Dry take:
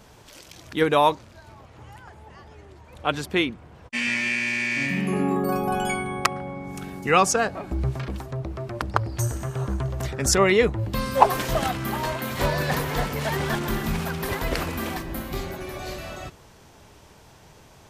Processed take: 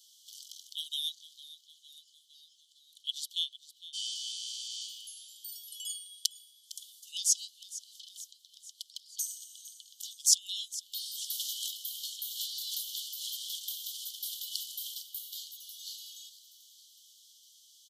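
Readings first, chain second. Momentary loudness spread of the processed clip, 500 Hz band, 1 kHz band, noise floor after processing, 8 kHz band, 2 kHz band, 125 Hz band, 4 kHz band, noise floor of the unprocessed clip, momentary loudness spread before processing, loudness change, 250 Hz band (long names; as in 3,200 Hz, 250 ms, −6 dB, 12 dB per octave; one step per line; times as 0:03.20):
19 LU, below −40 dB, below −40 dB, −64 dBFS, 0.0 dB, below −35 dB, below −40 dB, −1.0 dB, −51 dBFS, 14 LU, −10.0 dB, below −40 dB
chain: Chebyshev high-pass filter 3,000 Hz, order 10
echo with shifted repeats 457 ms, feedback 59%, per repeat +54 Hz, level −16 dB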